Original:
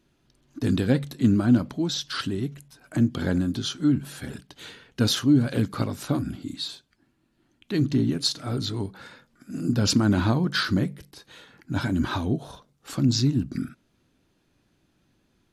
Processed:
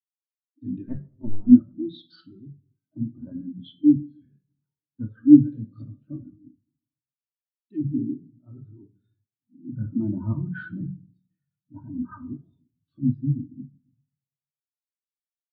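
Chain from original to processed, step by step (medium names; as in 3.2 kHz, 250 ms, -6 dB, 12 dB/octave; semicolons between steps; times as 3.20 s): 0.88–1.47 s: cycle switcher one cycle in 2, muted; band-stop 810 Hz, Q 16; in parallel at -4 dB: saturation -20 dBFS, distortion -11 dB; on the sum: LFO low-pass sine 0.57 Hz 910–4800 Hz; on a send at -3 dB: reverberation RT60 1.2 s, pre-delay 3 ms; on the sum: spectral contrast expander 2.5:1; trim +1.5 dB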